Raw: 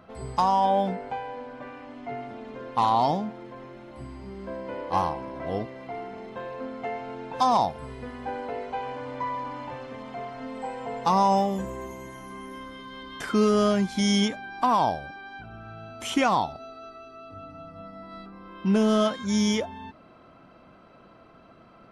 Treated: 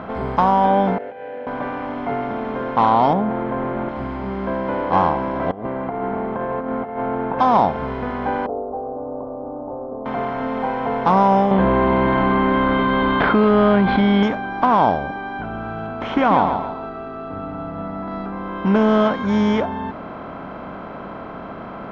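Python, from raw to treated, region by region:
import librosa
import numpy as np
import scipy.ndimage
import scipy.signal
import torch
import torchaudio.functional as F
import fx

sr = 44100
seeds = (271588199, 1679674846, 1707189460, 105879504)

y = fx.chain(x, sr, fx.over_compress(threshold_db=-37.0, ratio=-1.0),
    fx.vowel_filter(vowel='e'), at=(0.98, 1.47))
y = fx.chain(y, sr, fx.resample_bad(factor=4, down='filtered', up='hold'),
    fx.spacing_loss(db_at_10k=38),
    fx.env_flatten(amount_pct=50), at=(3.13, 3.89))
y = fx.chain(y, sr, fx.lowpass(hz=1300.0, slope=12),
    fx.over_compress(threshold_db=-37.0, ratio=-0.5), at=(5.51, 7.39))
y = fx.chain(y, sr, fx.steep_lowpass(hz=1100.0, slope=96),
    fx.low_shelf(hz=260.0, db=-10.5),
    fx.fixed_phaser(hz=410.0, stages=4), at=(8.46, 10.06))
y = fx.chain(y, sr, fx.steep_lowpass(hz=4400.0, slope=72),
    fx.env_flatten(amount_pct=70), at=(11.51, 14.23))
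y = fx.chain(y, sr, fx.air_absorb(metres=160.0),
    fx.echo_feedback(ms=140, feedback_pct=22, wet_db=-10.0), at=(15.86, 18.08))
y = fx.bin_compress(y, sr, power=0.6)
y = scipy.signal.sosfilt(scipy.signal.butter(2, 2000.0, 'lowpass', fs=sr, output='sos'), y)
y = F.gain(torch.from_numpy(y), 4.0).numpy()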